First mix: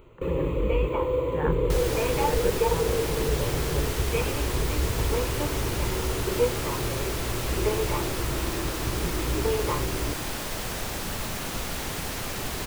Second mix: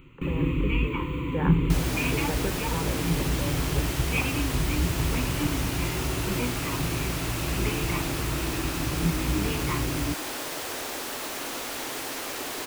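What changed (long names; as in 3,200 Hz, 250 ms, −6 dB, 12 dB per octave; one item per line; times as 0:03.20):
first sound: add drawn EQ curve 110 Hz 0 dB, 170 Hz +12 dB, 280 Hz +8 dB, 650 Hz −30 dB, 940 Hz −4 dB, 2,700 Hz +8 dB, 3,900 Hz −1 dB
second sound: add Butterworth high-pass 240 Hz 96 dB per octave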